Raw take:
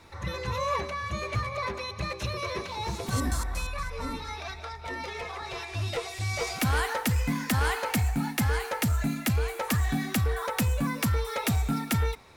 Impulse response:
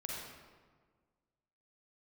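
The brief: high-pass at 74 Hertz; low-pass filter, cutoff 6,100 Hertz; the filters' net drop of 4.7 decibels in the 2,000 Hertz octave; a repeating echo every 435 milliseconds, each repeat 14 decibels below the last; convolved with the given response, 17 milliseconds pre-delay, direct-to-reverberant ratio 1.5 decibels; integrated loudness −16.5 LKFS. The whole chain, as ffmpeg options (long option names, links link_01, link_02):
-filter_complex "[0:a]highpass=74,lowpass=6100,equalizer=frequency=2000:width_type=o:gain=-6,aecho=1:1:435|870:0.2|0.0399,asplit=2[link_01][link_02];[1:a]atrim=start_sample=2205,adelay=17[link_03];[link_02][link_03]afir=irnorm=-1:irlink=0,volume=-2dB[link_04];[link_01][link_04]amix=inputs=2:normalize=0,volume=13dB"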